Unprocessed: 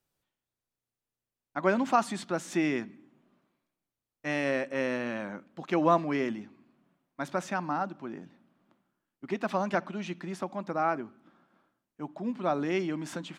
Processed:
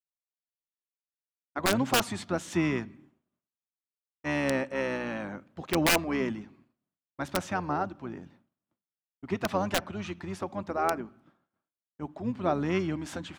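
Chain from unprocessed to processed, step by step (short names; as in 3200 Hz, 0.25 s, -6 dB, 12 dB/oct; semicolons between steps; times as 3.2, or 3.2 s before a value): wrapped overs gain 16 dB; harmoniser -12 st -8 dB; expander -54 dBFS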